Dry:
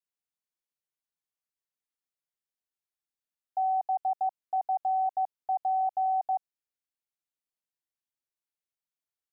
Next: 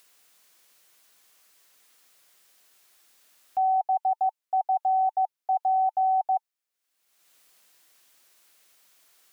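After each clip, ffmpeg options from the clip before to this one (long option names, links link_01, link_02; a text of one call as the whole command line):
ffmpeg -i in.wav -af "highpass=frequency=510:poles=1,bandreject=frequency=890:width=15,acompressor=mode=upward:threshold=-46dB:ratio=2.5,volume=6dB" out.wav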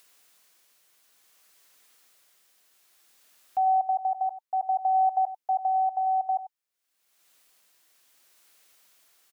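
ffmpeg -i in.wav -af "tremolo=f=0.58:d=0.33,aecho=1:1:95:0.211" out.wav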